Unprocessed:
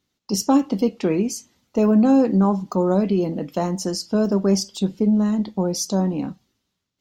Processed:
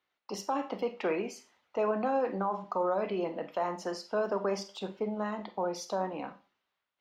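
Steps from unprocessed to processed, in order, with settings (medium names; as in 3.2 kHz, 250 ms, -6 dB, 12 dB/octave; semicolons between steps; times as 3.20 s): three-band isolator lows -24 dB, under 530 Hz, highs -23 dB, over 2.9 kHz; peak limiter -23 dBFS, peak gain reduction 9.5 dB; Schroeder reverb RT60 0.32 s, combs from 31 ms, DRR 10.5 dB; trim +1 dB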